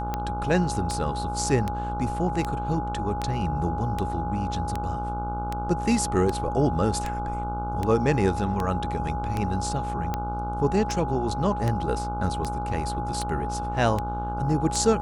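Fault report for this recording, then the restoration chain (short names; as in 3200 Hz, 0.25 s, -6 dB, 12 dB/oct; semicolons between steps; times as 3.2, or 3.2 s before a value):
buzz 60 Hz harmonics 25 -32 dBFS
tick 78 rpm -14 dBFS
tone 830 Hz -30 dBFS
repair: de-click; de-hum 60 Hz, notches 25; notch 830 Hz, Q 30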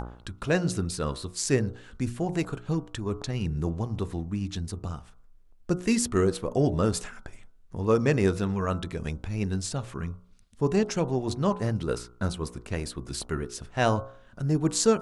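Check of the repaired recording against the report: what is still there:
none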